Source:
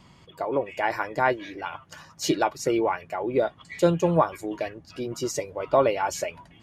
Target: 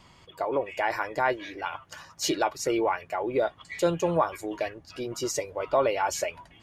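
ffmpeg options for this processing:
ffmpeg -i in.wav -filter_complex "[0:a]asplit=2[link_01][link_02];[link_02]alimiter=limit=-16.5dB:level=0:latency=1,volume=3dB[link_03];[link_01][link_03]amix=inputs=2:normalize=0,equalizer=frequency=180:width_type=o:width=1.7:gain=-7.5,volume=-6.5dB" out.wav

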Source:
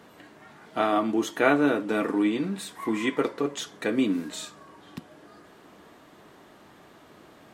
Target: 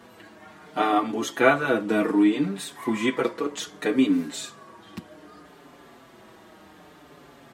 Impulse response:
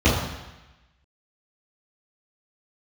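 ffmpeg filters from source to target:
-filter_complex "[0:a]asplit=2[link_01][link_02];[link_02]adelay=5.6,afreqshift=-0.65[link_03];[link_01][link_03]amix=inputs=2:normalize=1,volume=5.5dB"

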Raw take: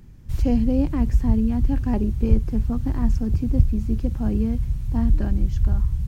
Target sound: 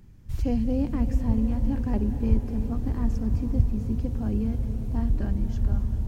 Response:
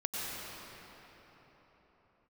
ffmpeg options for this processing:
-filter_complex "[0:a]asplit=2[link_01][link_02];[1:a]atrim=start_sample=2205,asetrate=22932,aresample=44100,adelay=10[link_03];[link_02][link_03]afir=irnorm=-1:irlink=0,volume=-17dB[link_04];[link_01][link_04]amix=inputs=2:normalize=0,volume=-5dB"

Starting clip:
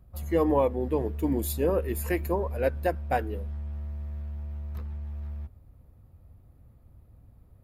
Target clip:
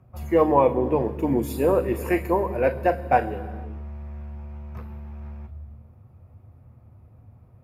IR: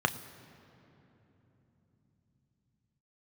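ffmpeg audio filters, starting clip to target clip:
-filter_complex "[0:a]lowshelf=frequency=140:gain=-4.5[link_01];[1:a]atrim=start_sample=2205,afade=type=out:start_time=0.45:duration=0.01,atrim=end_sample=20286,asetrate=36162,aresample=44100[link_02];[link_01][link_02]afir=irnorm=-1:irlink=0,volume=-5dB"

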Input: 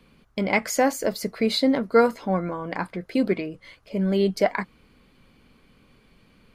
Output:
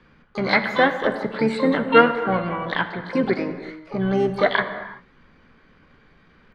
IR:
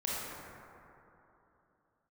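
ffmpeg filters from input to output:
-filter_complex "[0:a]lowpass=frequency=1700:width_type=q:width=3.3,asplit=3[link_01][link_02][link_03];[link_02]asetrate=29433,aresample=44100,atempo=1.49831,volume=-12dB[link_04];[link_03]asetrate=88200,aresample=44100,atempo=0.5,volume=-10dB[link_05];[link_01][link_04][link_05]amix=inputs=3:normalize=0,asplit=2[link_06][link_07];[1:a]atrim=start_sample=2205,afade=type=out:start_time=0.43:duration=0.01,atrim=end_sample=19404,adelay=13[link_08];[link_07][link_08]afir=irnorm=-1:irlink=0,volume=-13dB[link_09];[link_06][link_09]amix=inputs=2:normalize=0"

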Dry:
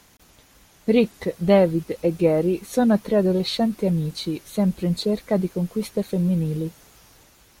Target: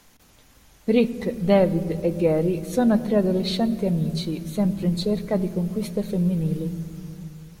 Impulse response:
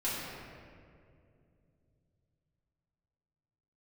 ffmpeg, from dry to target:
-filter_complex "[0:a]asplit=2[link_01][link_02];[link_02]lowshelf=frequency=190:gain=9.5[link_03];[1:a]atrim=start_sample=2205,lowshelf=frequency=120:gain=11[link_04];[link_03][link_04]afir=irnorm=-1:irlink=0,volume=-20.5dB[link_05];[link_01][link_05]amix=inputs=2:normalize=0,volume=-2.5dB"

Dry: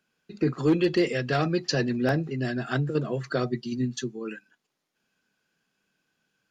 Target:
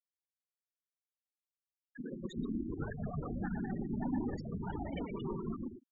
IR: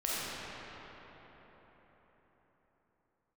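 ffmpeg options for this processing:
-af "areverse,acrusher=bits=6:mix=0:aa=0.5,asetrate=48510,aresample=44100,aeval=exprs='0.0355*(cos(1*acos(clip(val(0)/0.0355,-1,1)))-cos(1*PI/2))+0.00126*(cos(2*acos(clip(val(0)/0.0355,-1,1)))-cos(2*PI/2))+0.00251*(cos(6*acos(clip(val(0)/0.0355,-1,1)))-cos(6*PI/2))':channel_layout=same,acompressor=threshold=-33dB:ratio=3,equalizer=frequency=5000:width=3.5:gain=-11,afftfilt=real='hypot(re,im)*cos(2*PI*random(0))':imag='hypot(re,im)*sin(2*PI*random(1))':win_size=512:overlap=0.75,equalizer=frequency=250:width_type=o:width=1:gain=4,equalizer=frequency=500:width_type=o:width=1:gain=-8,equalizer=frequency=1000:width_type=o:width=1:gain=4,equalizer=frequency=2000:width_type=o:width=1:gain=-4,equalizer=frequency=4000:width_type=o:width=1:gain=3,aecho=1:1:120|198|248.7|281.7|303.1:0.631|0.398|0.251|0.158|0.1,flanger=delay=1.6:depth=3.7:regen=-31:speed=0.66:shape=sinusoidal,afftfilt=real='re*gte(hypot(re,im),0.0141)':imag='im*gte(hypot(re,im),0.0141)':win_size=1024:overlap=0.75,volume=5.5dB"

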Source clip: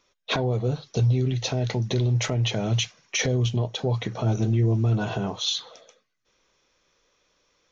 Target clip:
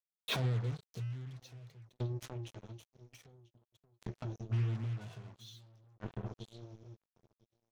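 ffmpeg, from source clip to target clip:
ffmpeg -i in.wav -filter_complex "[0:a]asplit=2[link_01][link_02];[link_02]adelay=997,lowpass=frequency=860:poles=1,volume=-12.5dB,asplit=2[link_03][link_04];[link_04]adelay=997,lowpass=frequency=860:poles=1,volume=0.46,asplit=2[link_05][link_06];[link_06]adelay=997,lowpass=frequency=860:poles=1,volume=0.46,asplit=2[link_07][link_08];[link_08]adelay=997,lowpass=frequency=860:poles=1,volume=0.46,asplit=2[link_09][link_10];[link_10]adelay=997,lowpass=frequency=860:poles=1,volume=0.46[link_11];[link_01][link_03][link_05][link_07][link_09][link_11]amix=inputs=6:normalize=0,acompressor=mode=upward:threshold=-31dB:ratio=2.5,adynamicequalizer=threshold=0.0158:dfrequency=120:dqfactor=1.8:tfrequency=120:tqfactor=1.8:attack=5:release=100:ratio=0.375:range=3.5:mode=boostabove:tftype=bell,flanger=delay=1.7:depth=9.7:regen=-43:speed=0.59:shape=sinusoidal,alimiter=limit=-17dB:level=0:latency=1:release=117,asplit=3[link_12][link_13][link_14];[link_12]afade=type=out:start_time=1.91:duration=0.02[link_15];[link_13]acompressor=threshold=-36dB:ratio=10,afade=type=in:start_time=1.91:duration=0.02,afade=type=out:start_time=4.51:duration=0.02[link_16];[link_14]afade=type=in:start_time=4.51:duration=0.02[link_17];[link_15][link_16][link_17]amix=inputs=3:normalize=0,highpass=frequency=49:width=0.5412,highpass=frequency=49:width=1.3066,equalizer=frequency=650:width=0.45:gain=-6,acrusher=bits=5:mix=0:aa=0.5,aeval=exprs='val(0)*pow(10,-36*if(lt(mod(0.5*n/s,1),2*abs(0.5)/1000),1-mod(0.5*n/s,1)/(2*abs(0.5)/1000),(mod(0.5*n/s,1)-2*abs(0.5)/1000)/(1-2*abs(0.5)/1000))/20)':channel_layout=same,volume=2.5dB" out.wav

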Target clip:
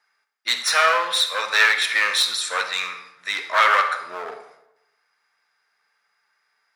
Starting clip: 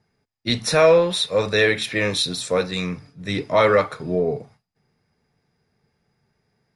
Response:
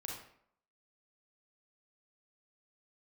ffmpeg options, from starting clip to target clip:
-filter_complex "[0:a]aeval=exprs='clip(val(0),-1,0.1)':channel_layout=same,highpass=frequency=1300:width_type=q:width=2.1,asplit=2[link_01][link_02];[1:a]atrim=start_sample=2205,asetrate=32193,aresample=44100[link_03];[link_02][link_03]afir=irnorm=-1:irlink=0,volume=-4dB[link_04];[link_01][link_04]amix=inputs=2:normalize=0"

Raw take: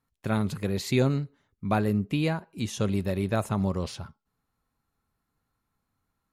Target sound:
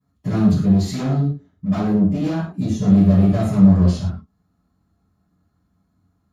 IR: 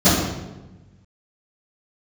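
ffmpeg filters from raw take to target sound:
-filter_complex "[0:a]volume=28dB,asoftclip=hard,volume=-28dB,asettb=1/sr,asplit=3[link_01][link_02][link_03];[link_01]atrim=end=0.594[link_04];[link_02]atrim=start=0.59:end=2.84,asetpts=PTS-STARTPTS,afade=type=in:duration=0.004:curve=qsin,afade=type=out:start_time=2.246:duration=0.004:curve=qsin,acrossover=split=720[link_05][link_06];[link_05]aeval=exprs='val(0)*(1-0.5/2+0.5/2*cos(2*PI*1.4*n/s))':channel_layout=same[link_07];[link_06]aeval=exprs='val(0)*(1-0.5/2-0.5/2*cos(2*PI*1.4*n/s))':channel_layout=same[link_08];[link_07][link_08]amix=inputs=2:normalize=0[link_09];[link_03]atrim=start=2.836[link_10];[link_04][link_09]acrossfade=duration=0.004:curve1=hsin:curve2=qsin[link_11];[link_11][link_10]acrossfade=duration=0.004:curve1=qsin:curve2=hsin[link_12];[1:a]atrim=start_sample=2205,atrim=end_sample=6174[link_13];[link_12][link_13]afir=irnorm=-1:irlink=0,volume=-17dB"

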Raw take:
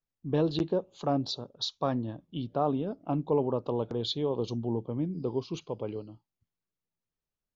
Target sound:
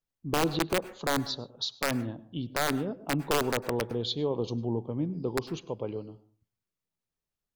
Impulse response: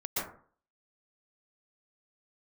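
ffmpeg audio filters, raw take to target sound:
-filter_complex "[0:a]aeval=exprs='(mod(8.91*val(0)+1,2)-1)/8.91':channel_layout=same,asplit=2[link_01][link_02];[1:a]atrim=start_sample=2205,asetrate=52920,aresample=44100[link_03];[link_02][link_03]afir=irnorm=-1:irlink=0,volume=-20.5dB[link_04];[link_01][link_04]amix=inputs=2:normalize=0"

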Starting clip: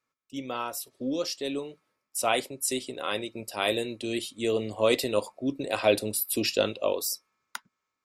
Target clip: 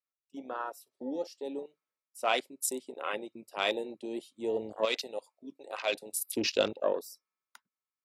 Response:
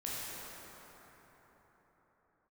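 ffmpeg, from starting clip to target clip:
-af "asetnsamples=nb_out_samples=441:pad=0,asendcmd='4.85 highpass f 1500;6.13 highpass f 210',highpass=frequency=440:poles=1,afwtdn=0.02,volume=-1.5dB"

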